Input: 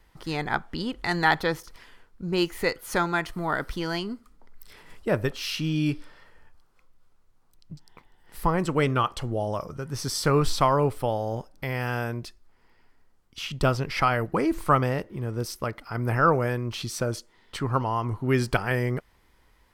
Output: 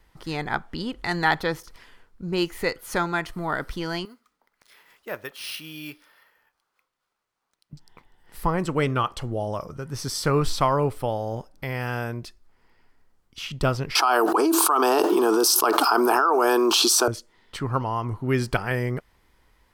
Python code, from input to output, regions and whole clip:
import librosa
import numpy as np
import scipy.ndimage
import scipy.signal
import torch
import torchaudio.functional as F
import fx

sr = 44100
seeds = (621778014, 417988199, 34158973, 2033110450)

y = fx.chain(x, sr, fx.highpass(hz=1400.0, slope=6),
    fx.high_shelf(hz=5500.0, db=-6.5),
    fx.resample_bad(factor=3, down='none', up='hold'), at=(4.05, 7.73))
y = fx.chain(y, sr, fx.highpass(hz=380.0, slope=24),
    fx.fixed_phaser(hz=540.0, stages=6),
    fx.env_flatten(amount_pct=100), at=(13.95, 17.08))